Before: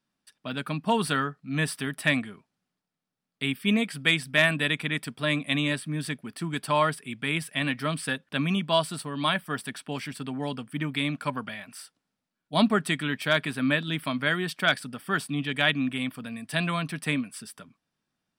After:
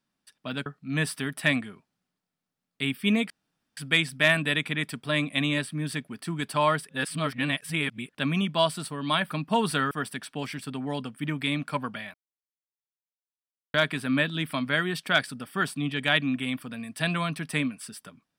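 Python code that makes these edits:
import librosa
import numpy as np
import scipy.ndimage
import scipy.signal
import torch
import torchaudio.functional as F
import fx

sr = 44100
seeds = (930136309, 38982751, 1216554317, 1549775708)

y = fx.edit(x, sr, fx.move(start_s=0.66, length_s=0.61, to_s=9.44),
    fx.insert_room_tone(at_s=3.91, length_s=0.47),
    fx.reverse_span(start_s=7.03, length_s=1.2),
    fx.silence(start_s=11.67, length_s=1.6), tone=tone)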